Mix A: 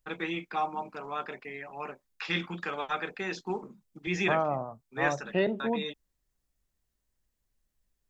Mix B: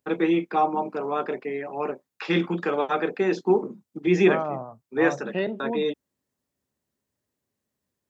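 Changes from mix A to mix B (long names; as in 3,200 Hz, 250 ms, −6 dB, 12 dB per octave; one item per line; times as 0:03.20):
first voice: add parametric band 370 Hz +15 dB 2.5 octaves
master: add high-pass filter 87 Hz 24 dB per octave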